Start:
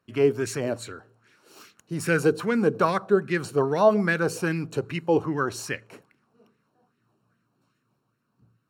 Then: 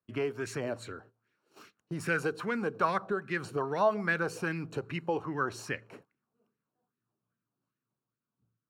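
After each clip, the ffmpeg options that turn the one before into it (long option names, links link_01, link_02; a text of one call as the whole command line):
ffmpeg -i in.wav -filter_complex "[0:a]agate=range=-14dB:threshold=-51dB:ratio=16:detection=peak,highshelf=frequency=4000:gain=-10,acrossover=split=760[link_01][link_02];[link_01]acompressor=threshold=-30dB:ratio=6[link_03];[link_03][link_02]amix=inputs=2:normalize=0,volume=-2.5dB" out.wav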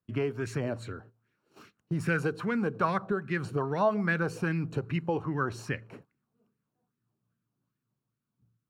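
ffmpeg -i in.wav -af "bass=frequency=250:gain=9,treble=frequency=4000:gain=-3" out.wav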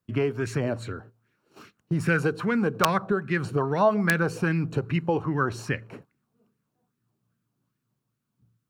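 ffmpeg -i in.wav -af "aeval=exprs='(mod(5.62*val(0)+1,2)-1)/5.62':channel_layout=same,volume=5dB" out.wav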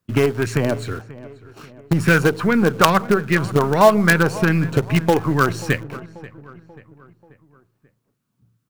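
ffmpeg -i in.wav -filter_complex "[0:a]asplit=2[link_01][link_02];[link_02]acrusher=bits=4:dc=4:mix=0:aa=0.000001,volume=-7dB[link_03];[link_01][link_03]amix=inputs=2:normalize=0,asplit=2[link_04][link_05];[link_05]adelay=536,lowpass=frequency=2500:poles=1,volume=-18.5dB,asplit=2[link_06][link_07];[link_07]adelay=536,lowpass=frequency=2500:poles=1,volume=0.52,asplit=2[link_08][link_09];[link_09]adelay=536,lowpass=frequency=2500:poles=1,volume=0.52,asplit=2[link_10][link_11];[link_11]adelay=536,lowpass=frequency=2500:poles=1,volume=0.52[link_12];[link_04][link_06][link_08][link_10][link_12]amix=inputs=5:normalize=0,volume=5.5dB" out.wav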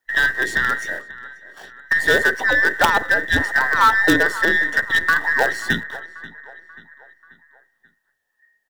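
ffmpeg -i in.wav -filter_complex "[0:a]afftfilt=real='real(if(between(b,1,1012),(2*floor((b-1)/92)+1)*92-b,b),0)':imag='imag(if(between(b,1,1012),(2*floor((b-1)/92)+1)*92-b,b),0)*if(between(b,1,1012),-1,1)':win_size=2048:overlap=0.75,acrossover=split=430[link_01][link_02];[link_01]asplit=2[link_03][link_04];[link_04]adelay=46,volume=-3.5dB[link_05];[link_03][link_05]amix=inputs=2:normalize=0[link_06];[link_02]asoftclip=type=tanh:threshold=-7.5dB[link_07];[link_06][link_07]amix=inputs=2:normalize=0" out.wav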